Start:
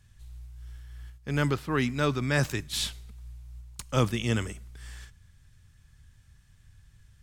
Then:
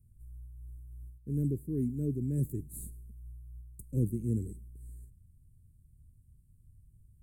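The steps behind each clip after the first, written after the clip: inverse Chebyshev band-stop 700–5700 Hz, stop band 40 dB; gain -3 dB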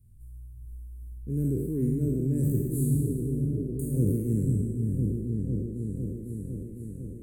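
spectral trails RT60 1.55 s; repeats that get brighter 0.503 s, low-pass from 200 Hz, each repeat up 1 oct, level 0 dB; gain +2.5 dB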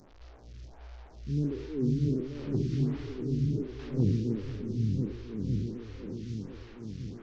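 delta modulation 32 kbps, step -44 dBFS; photocell phaser 1.4 Hz

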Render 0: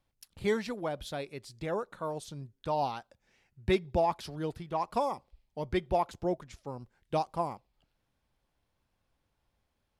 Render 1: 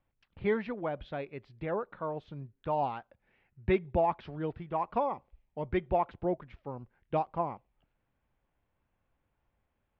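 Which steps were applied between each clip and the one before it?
LPF 2700 Hz 24 dB/oct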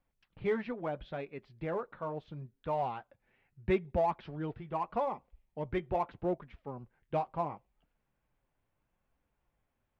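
flange 0.76 Hz, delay 4 ms, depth 4.2 ms, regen -45%; in parallel at -11 dB: hard clip -35 dBFS, distortion -6 dB

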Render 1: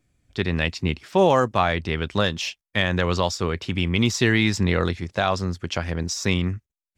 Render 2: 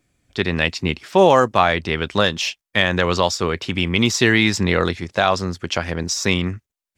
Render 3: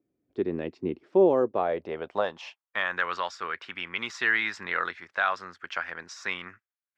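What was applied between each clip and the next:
low shelf 150 Hz -9 dB; gain +5.5 dB
band-pass sweep 350 Hz -> 1500 Hz, 1.32–3.04; gain -2 dB

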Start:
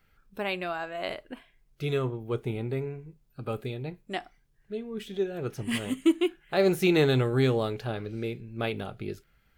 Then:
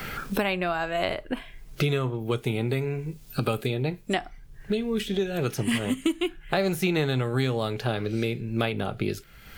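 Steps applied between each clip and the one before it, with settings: dynamic EQ 380 Hz, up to -5 dB, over -35 dBFS, Q 1.7; three-band squash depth 100%; gain +4.5 dB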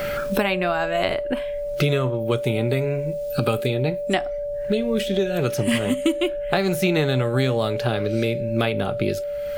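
whine 580 Hz -29 dBFS; gain +4 dB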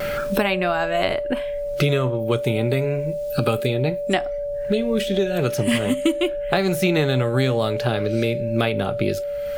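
vibrato 0.4 Hz 11 cents; gain +1 dB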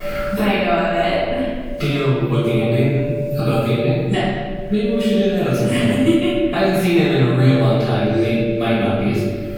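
reverb RT60 1.5 s, pre-delay 3 ms, DRR -17 dB; gain -17.5 dB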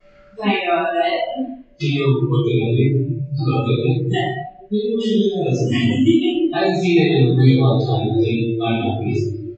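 spectral noise reduction 27 dB; downsampling 16000 Hz; gain +1.5 dB

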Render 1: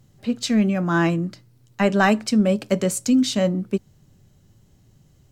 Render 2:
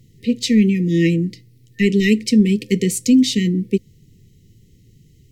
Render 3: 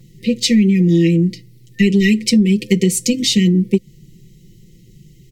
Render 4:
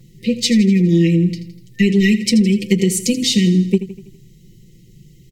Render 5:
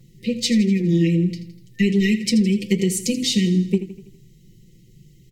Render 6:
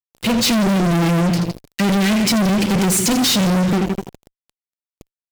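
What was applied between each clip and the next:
FFT band-reject 510–1800 Hz; bell 7600 Hz -2.5 dB 0.77 oct; gain +5 dB
comb 5.7 ms, depth 91%; compressor, threshold -13 dBFS, peak gain reduction 8.5 dB; gain +3.5 dB
feedback echo 82 ms, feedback 53%, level -13.5 dB; gain -1 dB
flange 1.4 Hz, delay 7.1 ms, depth 4.3 ms, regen -82%
fuzz box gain 37 dB, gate -40 dBFS; gain -1.5 dB

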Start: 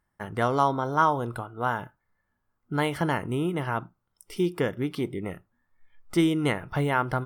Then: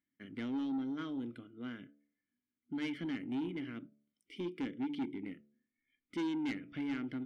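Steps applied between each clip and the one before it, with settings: vowel filter i; de-hum 72.27 Hz, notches 9; soft clip -35 dBFS, distortion -11 dB; gain +3 dB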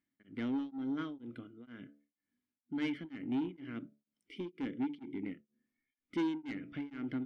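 high shelf 4500 Hz -9 dB; beating tremolo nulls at 2.1 Hz; gain +3.5 dB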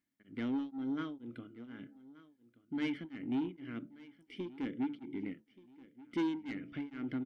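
feedback echo 1.179 s, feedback 41%, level -20 dB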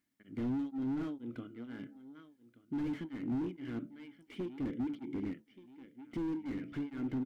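slew limiter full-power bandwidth 4.4 Hz; gain +3.5 dB

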